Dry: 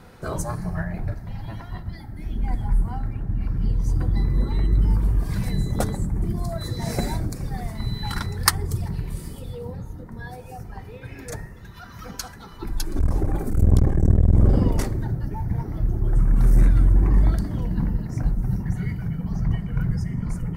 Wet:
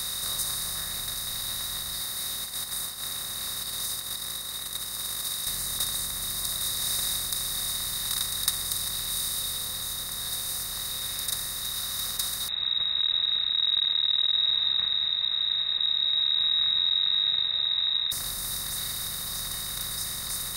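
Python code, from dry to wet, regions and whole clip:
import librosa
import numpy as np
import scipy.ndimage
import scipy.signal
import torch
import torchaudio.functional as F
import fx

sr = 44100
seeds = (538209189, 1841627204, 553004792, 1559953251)

y = fx.chain(x, sr, fx.cheby1_highpass(hz=450.0, order=2),
    fx.over_compress(threshold_db=-45.0, ratio=-0.5), at=(2.01, 5.47))
y = fx.chain(y, sr, fx.cheby1_bandstop(low_hz=200.0, high_hz=1200.0, order=5),
    fx.freq_invert(carrier_hz=3800), at=(12.48, 18.12))
y = fx.bin_compress(y, sr, power=0.2)
y = librosa.effects.preemphasis(y, coef=0.9, zi=[0.0])
y = y * 10.0 ** (-9.0 / 20.0)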